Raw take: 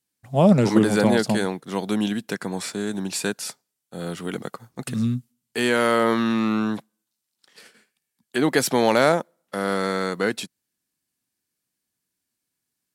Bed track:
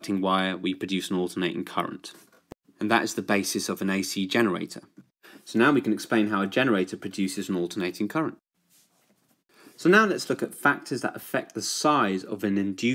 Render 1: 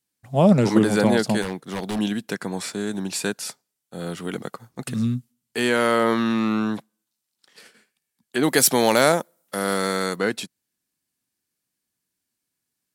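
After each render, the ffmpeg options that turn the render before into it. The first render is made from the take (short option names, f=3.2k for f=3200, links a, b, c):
-filter_complex "[0:a]asettb=1/sr,asplit=3[a][b][c];[a]atrim=end=1.424[d];[b]atrim=start=1.42:end=1.99,asetpts=PTS-STARTPTS,afade=t=in:d=0.004:c=qsin,afade=t=out:st=0.566:d=0.004:c=qsin,aeval=exprs='0.0944*(abs(mod(val(0)/0.0944+3,4)-2)-1)':c=same[e];[c]atrim=start=1.986[f];[d][e]acrossfade=d=0.004:c1=hsin:c2=qsin[g];[g][f]acrossfade=d=0.004:c1=qsin:c2=hsin,asettb=1/sr,asplit=3[h][i][j];[h]atrim=end=8.434[k];[i]atrim=start=8.43:end=10.16,asetpts=PTS-STARTPTS,afade=t=in:d=0.004:c=qsin,afade=t=out:st=1.726:d=0.004:c=qsin,aemphasis=mode=production:type=50kf[l];[j]atrim=start=10.156[m];[k][l]acrossfade=d=0.004:c1=hsin:c2=qsin[n];[n][m]acrossfade=d=0.004:c1=qsin:c2=hsin"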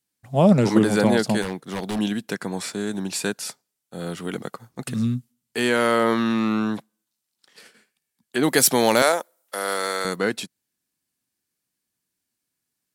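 -filter_complex "[0:a]asettb=1/sr,asplit=3[a][b][c];[a]atrim=end=9.024[d];[b]atrim=start=9.02:end=10.05,asetpts=PTS-STARTPTS,afade=t=in:d=0.004:c=qsin,afade=t=out:st=1.026:d=0.004:c=qsin,highpass=470[e];[c]atrim=start=10.046[f];[d][e]acrossfade=d=0.004:c1=hsin:c2=qsin[g];[g][f]acrossfade=d=0.004:c1=qsin:c2=hsin"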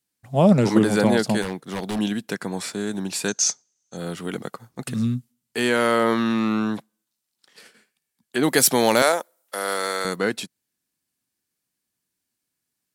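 -filter_complex "[0:a]asettb=1/sr,asplit=3[a][b][c];[a]atrim=end=3.284[d];[b]atrim=start=3.28:end=3.97,asetpts=PTS-STARTPTS,afade=t=in:d=0.004:c=qsin,afade=t=out:st=0.686:d=0.004:c=qsin,lowpass=f=6.3k:t=q:w=16[e];[c]atrim=start=3.966[f];[d][e]acrossfade=d=0.004:c1=hsin:c2=qsin[g];[g][f]acrossfade=d=0.004:c1=qsin:c2=hsin"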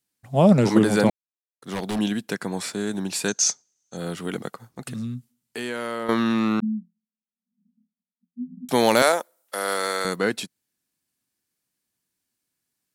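-filter_complex "[0:a]asettb=1/sr,asplit=3[a][b][c];[a]atrim=end=4.494[d];[b]atrim=start=4.49:end=6.09,asetpts=PTS-STARTPTS,afade=t=in:d=0.004:c=qsin,afade=t=out:st=1.596:d=0.004:c=qsin,acompressor=threshold=-33dB:ratio=2:attack=3.2:release=140:knee=1:detection=peak[e];[c]atrim=start=6.086[f];[d][e]acrossfade=d=0.004:c1=hsin:c2=qsin[g];[g][f]acrossfade=d=0.004:c1=qsin:c2=hsin,asettb=1/sr,asplit=3[h][i][j];[h]atrim=end=6.604[k];[i]atrim=start=6.6:end=8.69,asetpts=PTS-STARTPTS,afade=t=in:d=0.004:c=qsin,afade=t=out:st=2.086:d=0.004:c=qsin,asuperpass=centerf=210:order=20:qfactor=2.6[l];[j]atrim=start=8.686[m];[k][l]acrossfade=d=0.004:c1=hsin:c2=qsin[n];[n][m]acrossfade=d=0.004:c1=qsin:c2=hsin,asplit=3[o][p][q];[o]atrim=end=1.1,asetpts=PTS-STARTPTS,afade=t=out:st=1.096:d=0.004:c=hsin[r];[p]atrim=start=1.1:end=1.62,asetpts=PTS-STARTPTS,volume=0[s];[q]atrim=start=1.62,asetpts=PTS-STARTPTS,afade=t=in:d=0.004:c=hsin[t];[r][s][t]concat=n=3:v=0:a=1"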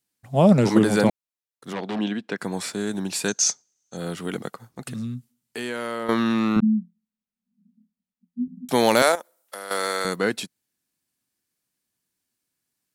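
-filter_complex "[0:a]asplit=3[a][b][c];[a]afade=t=out:st=1.72:d=0.02[d];[b]highpass=190,lowpass=3.4k,afade=t=in:st=1.72:d=0.02,afade=t=out:st=2.37:d=0.02[e];[c]afade=t=in:st=2.37:d=0.02[f];[d][e][f]amix=inputs=3:normalize=0,asettb=1/sr,asplit=3[g][h][i];[g]atrim=end=6.564[j];[h]atrim=start=6.56:end=8.48,asetpts=PTS-STARTPTS,afade=t=in:d=0.004:c=qsin,afade=t=out:st=1.916:d=0.004:c=qsin,bass=f=250:g=10,treble=f=4k:g=-3[k];[i]atrim=start=8.476[l];[j][k]acrossfade=d=0.004:c1=hsin:c2=qsin[m];[m][l]acrossfade=d=0.004:c1=qsin:c2=hsin,asettb=1/sr,asplit=3[n][o][p];[n]atrim=end=9.154[q];[o]atrim=start=9.15:end=9.71,asetpts=PTS-STARTPTS,afade=t=in:d=0.004:c=qsin,afade=t=out:st=0.556:d=0.004:c=qsin,acompressor=threshold=-32dB:ratio=4:attack=3.2:release=140:knee=1:detection=peak[r];[p]atrim=start=9.706[s];[q][r]acrossfade=d=0.004:c1=hsin:c2=qsin[t];[t][s]acrossfade=d=0.004:c1=qsin:c2=hsin"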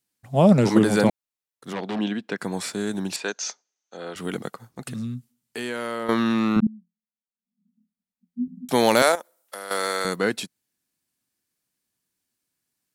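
-filter_complex "[0:a]asettb=1/sr,asplit=3[a][b][c];[a]atrim=end=3.164[d];[b]atrim=start=3.16:end=4.16,asetpts=PTS-STARTPTS,afade=t=in:d=0.004:c=qsin,afade=t=out:st=0.996:d=0.004:c=qsin,highpass=400,lowpass=3.6k[e];[c]atrim=start=4.156[f];[d][e]acrossfade=d=0.004:c1=hsin:c2=qsin[g];[g][f]acrossfade=d=0.004:c1=qsin:c2=hsin,asplit=2[h][i];[h]atrim=end=6.67,asetpts=PTS-STARTPTS,afade=t=out:st=6.666:d=0.004:c=hsin:silence=0.0841395[j];[i]atrim=start=6.67,asetpts=PTS-STARTPTS,afade=t=in:d=1.77:c=qua:silence=0.0841395[k];[j][k]concat=n=2:v=0:a=1"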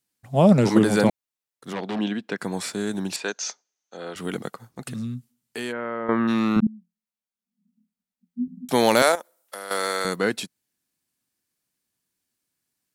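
-filter_complex "[0:a]asplit=3[a][b][c];[a]afade=t=out:st=5.71:d=0.02[d];[b]lowpass=f=2.1k:w=0.5412,lowpass=f=2.1k:w=1.3066,afade=t=in:st=5.71:d=0.02,afade=t=out:st=6.27:d=0.02[e];[c]afade=t=in:st=6.27:d=0.02[f];[d][e][f]amix=inputs=3:normalize=0"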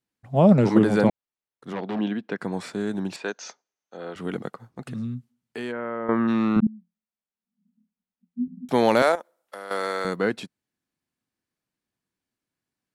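-af "lowpass=f=1.8k:p=1"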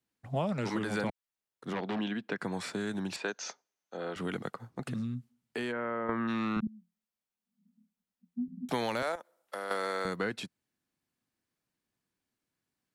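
-filter_complex "[0:a]alimiter=limit=-10dB:level=0:latency=1:release=349,acrossover=split=110|1100[a][b][c];[a]acompressor=threshold=-47dB:ratio=4[d];[b]acompressor=threshold=-34dB:ratio=4[e];[c]acompressor=threshold=-35dB:ratio=4[f];[d][e][f]amix=inputs=3:normalize=0"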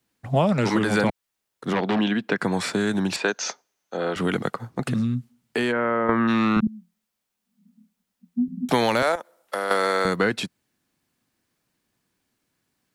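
-af "volume=11.5dB"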